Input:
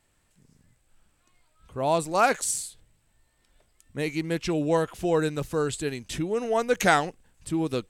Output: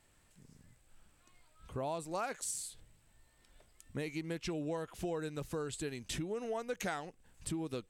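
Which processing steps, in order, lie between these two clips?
compression 5:1, threshold -37 dBFS, peak gain reduction 19.5 dB

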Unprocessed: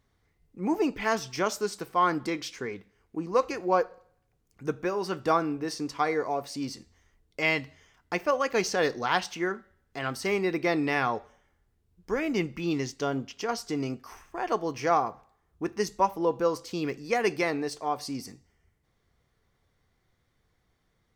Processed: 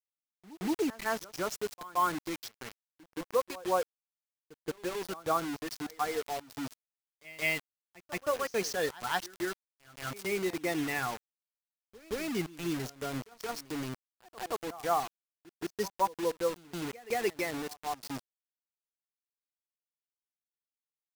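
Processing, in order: expander on every frequency bin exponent 1.5; bit crusher 6-bit; pre-echo 174 ms -19 dB; trim -3 dB

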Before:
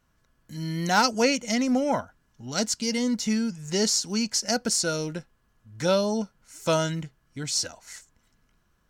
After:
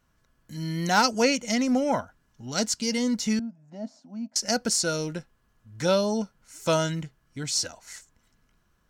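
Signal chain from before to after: 3.39–4.36 s: two resonant band-passes 410 Hz, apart 1.3 oct

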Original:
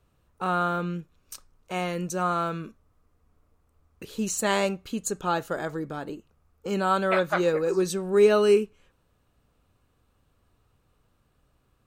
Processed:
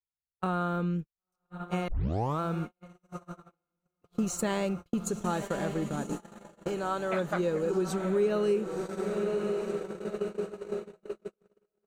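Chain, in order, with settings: 4.10–5.03 s: companding laws mixed up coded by mu; bass shelf 390 Hz +10 dB; echo that smears into a reverb 1029 ms, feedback 63%, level -9 dB; gate -27 dBFS, range -53 dB; compression 2.5:1, threshold -35 dBFS, peak gain reduction 17 dB; 1.88 s: tape start 0.52 s; 6.68–7.13 s: peaking EQ 200 Hz -9.5 dB; trim +2.5 dB

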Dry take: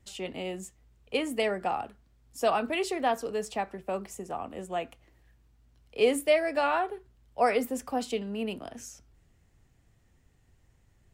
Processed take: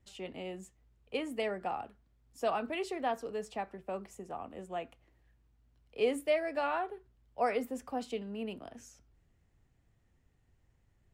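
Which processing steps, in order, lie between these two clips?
treble shelf 4.6 kHz -7 dB; trim -6 dB

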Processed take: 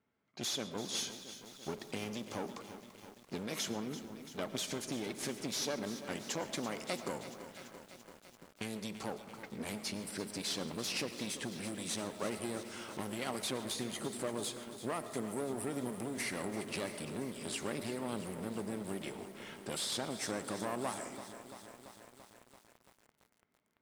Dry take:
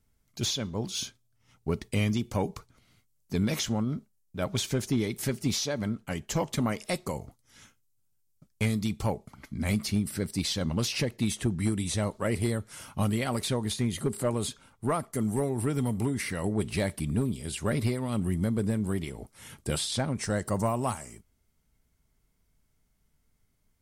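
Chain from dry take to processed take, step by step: compression, threshold -31 dBFS, peak gain reduction 9 dB; one-sided clip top -41 dBFS; level-controlled noise filter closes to 2.2 kHz, open at -32.5 dBFS; high-pass 260 Hz 12 dB/octave; on a send at -12 dB: reverberation RT60 1.4 s, pre-delay 70 ms; on the sum: bit-crushed delay 338 ms, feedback 80%, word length 9-bit, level -12 dB; trim +1 dB

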